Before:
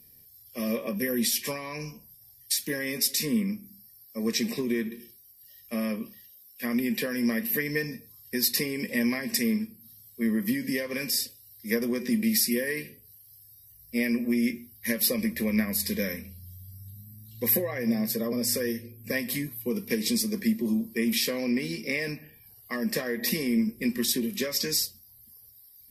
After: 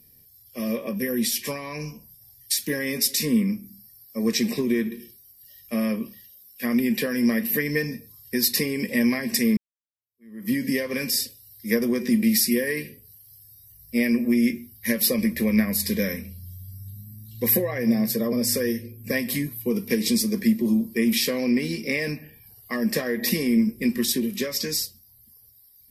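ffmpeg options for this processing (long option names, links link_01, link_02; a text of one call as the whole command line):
ffmpeg -i in.wav -filter_complex "[0:a]asplit=2[link_01][link_02];[link_01]atrim=end=9.57,asetpts=PTS-STARTPTS,afade=type=out:start_time=9.566:duration=0.004:curve=hsin[link_03];[link_02]atrim=start=9.57,asetpts=PTS-STARTPTS,afade=type=in:duration=0.96:curve=exp[link_04];[link_03][link_04]concat=n=2:v=0:a=1,lowshelf=frequency=440:gain=3,dynaudnorm=framelen=110:gausssize=31:maxgain=3dB" out.wav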